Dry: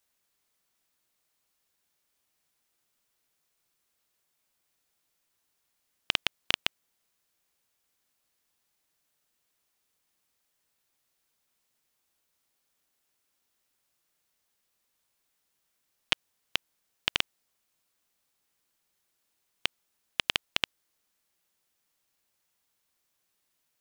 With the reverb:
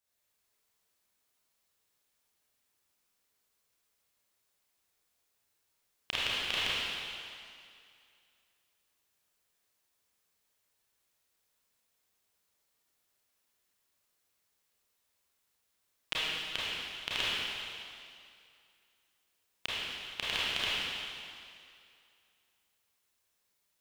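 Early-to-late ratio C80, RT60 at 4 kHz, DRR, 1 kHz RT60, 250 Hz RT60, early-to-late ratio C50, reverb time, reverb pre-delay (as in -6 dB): -2.5 dB, 2.3 s, -9.5 dB, 2.4 s, 2.2 s, -5.0 dB, 2.4 s, 27 ms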